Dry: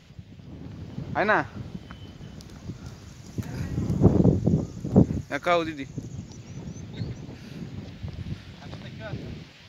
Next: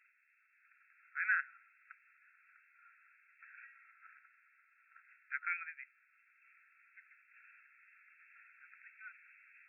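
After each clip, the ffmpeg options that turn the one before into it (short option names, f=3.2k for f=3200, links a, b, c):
-af "afftfilt=real='re*between(b*sr/4096,1300,2700)':imag='im*between(b*sr/4096,1300,2700)':win_size=4096:overlap=0.75,volume=-6.5dB"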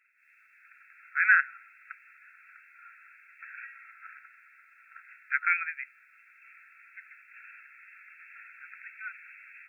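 -af "dynaudnorm=f=140:g=3:m=12dB"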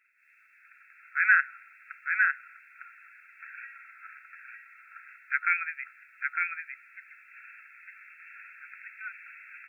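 -af "aecho=1:1:905:0.668"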